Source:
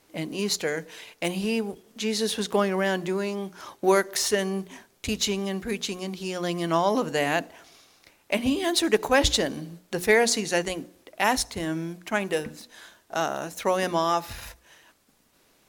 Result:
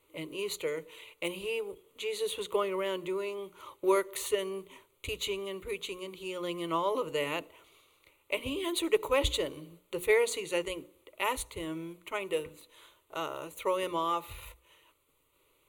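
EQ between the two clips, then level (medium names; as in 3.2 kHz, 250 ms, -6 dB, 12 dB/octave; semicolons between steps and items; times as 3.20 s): static phaser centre 1.1 kHz, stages 8; -4.0 dB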